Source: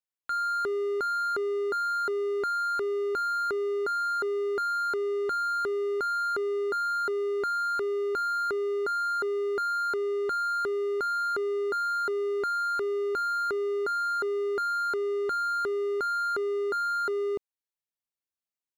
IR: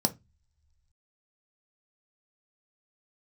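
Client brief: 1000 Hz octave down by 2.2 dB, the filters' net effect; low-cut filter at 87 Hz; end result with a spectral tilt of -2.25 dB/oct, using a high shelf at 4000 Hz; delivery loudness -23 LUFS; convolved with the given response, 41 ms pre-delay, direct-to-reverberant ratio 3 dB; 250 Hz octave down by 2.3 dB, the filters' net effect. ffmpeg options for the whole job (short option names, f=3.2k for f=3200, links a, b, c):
-filter_complex "[0:a]highpass=87,equalizer=f=250:t=o:g=-5,equalizer=f=1k:t=o:g=-5,highshelf=f=4k:g=5,asplit=2[a][b];[1:a]atrim=start_sample=2205,adelay=41[c];[b][c]afir=irnorm=-1:irlink=0,volume=-10.5dB[d];[a][d]amix=inputs=2:normalize=0,volume=9dB"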